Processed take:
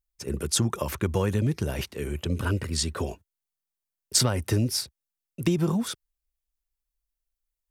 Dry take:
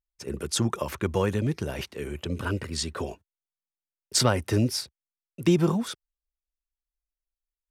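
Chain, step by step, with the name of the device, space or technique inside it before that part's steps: ASMR close-microphone chain (low shelf 170 Hz +7 dB; compressor 5:1, threshold -20 dBFS, peak gain reduction 6.5 dB; high shelf 7400 Hz +8 dB)

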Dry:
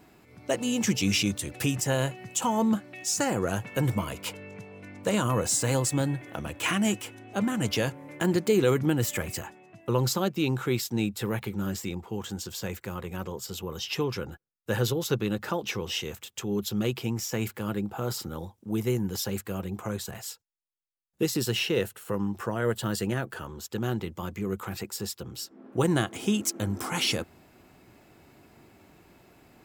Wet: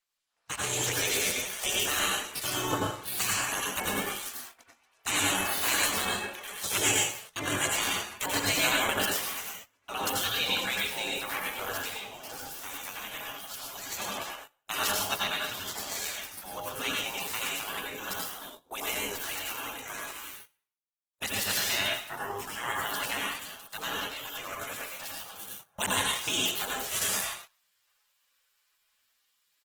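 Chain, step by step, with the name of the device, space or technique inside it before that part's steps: spectral gate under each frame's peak -20 dB weak; 12.37–12.82 bell 2100 Hz -4.5 dB 2.1 oct; speakerphone in a meeting room (reverb RT60 0.50 s, pre-delay 82 ms, DRR -2 dB; speakerphone echo 0.18 s, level -20 dB; AGC gain up to 9 dB; gate -43 dBFS, range -17 dB; gain -2 dB; Opus 16 kbps 48000 Hz)

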